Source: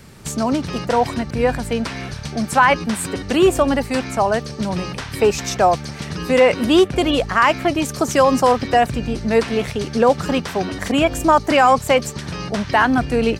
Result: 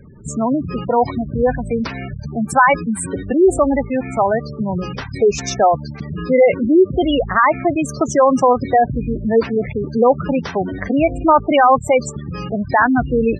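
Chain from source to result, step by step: 10.69–11.22 high shelf 9700 Hz -> 5200 Hz -8.5 dB; spectral gate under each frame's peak -15 dB strong; gain +2 dB

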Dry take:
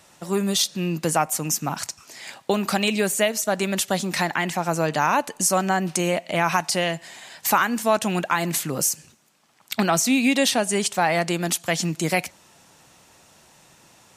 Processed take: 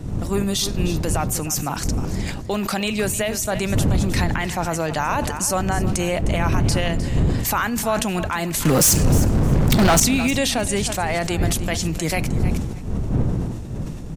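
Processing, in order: wind noise 150 Hz -22 dBFS; 8.65–10 sample leveller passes 5; limiter -11 dBFS, peak gain reduction 12 dB; feedback echo 0.308 s, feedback 18%, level -14.5 dB; sustainer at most 42 dB/s

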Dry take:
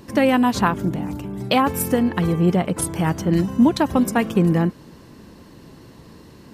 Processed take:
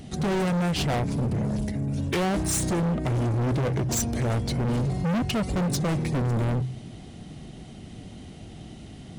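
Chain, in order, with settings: bell 1700 Hz -10 dB 0.78 oct; notches 60/120/180 Hz; wide varispeed 0.711×; overloaded stage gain 26 dB; gain +3 dB

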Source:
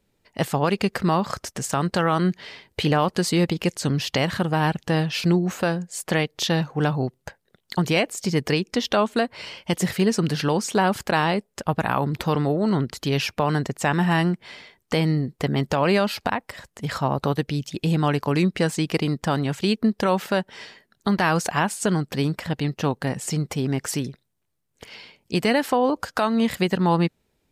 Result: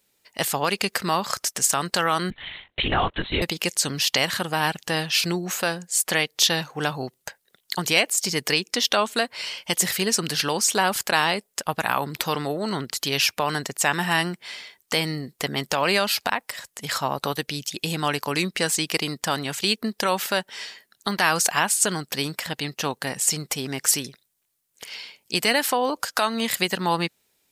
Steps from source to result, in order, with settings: tilt +3.5 dB/oct; 2.3–3.42 LPC vocoder at 8 kHz whisper

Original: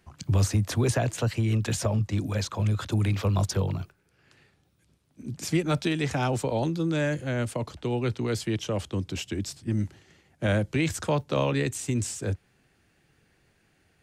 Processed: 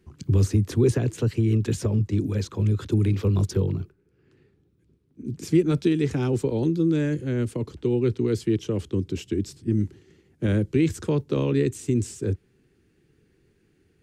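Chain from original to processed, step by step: resonant low shelf 510 Hz +7.5 dB, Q 3; 3.58–5.25 mismatched tape noise reduction decoder only; gain -5 dB

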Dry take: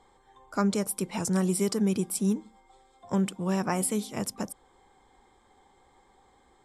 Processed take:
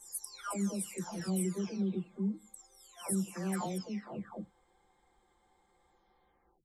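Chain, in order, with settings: spectral delay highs early, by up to 0.744 s; gain -7 dB

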